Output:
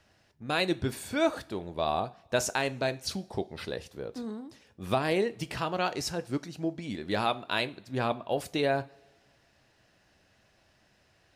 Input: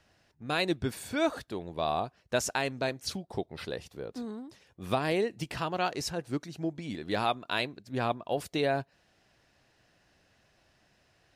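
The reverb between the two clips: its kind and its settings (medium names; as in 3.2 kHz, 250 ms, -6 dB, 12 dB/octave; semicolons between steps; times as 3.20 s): two-slope reverb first 0.32 s, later 1.5 s, from -19 dB, DRR 12.5 dB; trim +1 dB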